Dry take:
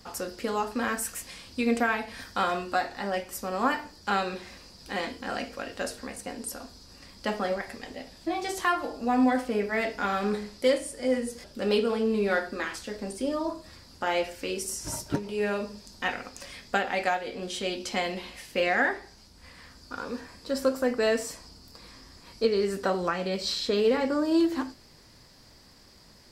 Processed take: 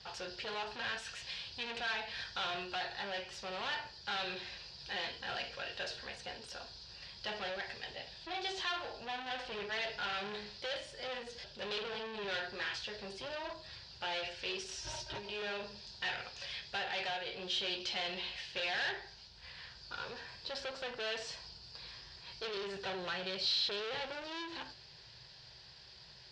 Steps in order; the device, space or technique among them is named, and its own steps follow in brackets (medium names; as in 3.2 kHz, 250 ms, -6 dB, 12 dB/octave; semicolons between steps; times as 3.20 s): 14.71–15.42 s: comb 3.2 ms, depth 66%; scooped metal amplifier (valve stage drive 33 dB, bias 0.2; cabinet simulation 81–4100 Hz, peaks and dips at 87 Hz -7 dB, 130 Hz +7 dB, 240 Hz -4 dB, 370 Hz +10 dB, 1.2 kHz -10 dB, 2.1 kHz -8 dB; amplifier tone stack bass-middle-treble 10-0-10); trim +9.5 dB